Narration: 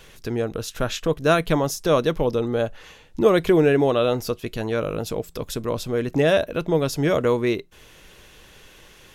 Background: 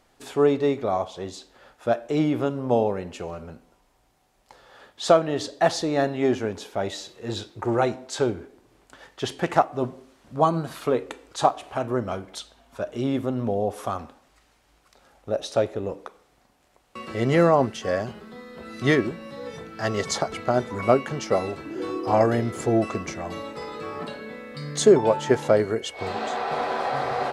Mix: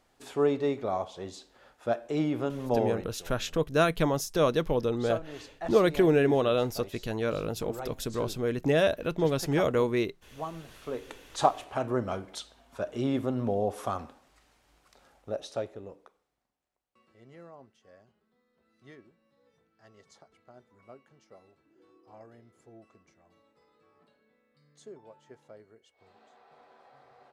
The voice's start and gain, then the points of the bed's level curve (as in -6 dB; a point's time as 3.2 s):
2.50 s, -5.5 dB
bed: 2.96 s -6 dB
3.22 s -17 dB
10.75 s -17 dB
11.33 s -3.5 dB
15 s -3.5 dB
17.2 s -32 dB